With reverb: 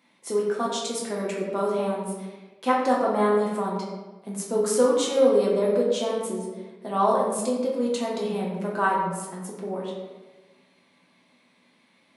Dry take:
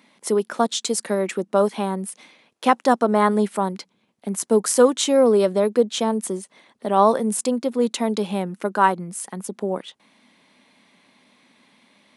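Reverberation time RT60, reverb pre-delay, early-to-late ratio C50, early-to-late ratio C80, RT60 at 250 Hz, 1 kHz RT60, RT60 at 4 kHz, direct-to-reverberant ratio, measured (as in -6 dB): 1.2 s, 6 ms, 2.0 dB, 4.0 dB, 1.4 s, 1.1 s, 0.75 s, -4.5 dB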